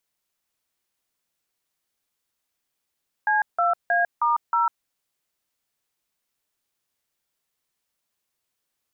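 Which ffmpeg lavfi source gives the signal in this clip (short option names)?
-f lavfi -i "aevalsrc='0.0944*clip(min(mod(t,0.315),0.15-mod(t,0.315))/0.002,0,1)*(eq(floor(t/0.315),0)*(sin(2*PI*852*mod(t,0.315))+sin(2*PI*1633*mod(t,0.315)))+eq(floor(t/0.315),1)*(sin(2*PI*697*mod(t,0.315))+sin(2*PI*1336*mod(t,0.315)))+eq(floor(t/0.315),2)*(sin(2*PI*697*mod(t,0.315))+sin(2*PI*1633*mod(t,0.315)))+eq(floor(t/0.315),3)*(sin(2*PI*941*mod(t,0.315))+sin(2*PI*1209*mod(t,0.315)))+eq(floor(t/0.315),4)*(sin(2*PI*941*mod(t,0.315))+sin(2*PI*1336*mod(t,0.315))))':d=1.575:s=44100"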